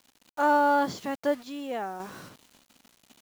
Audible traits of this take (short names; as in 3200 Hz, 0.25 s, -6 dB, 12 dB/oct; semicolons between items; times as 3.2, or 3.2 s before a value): a quantiser's noise floor 8-bit, dither none; random-step tremolo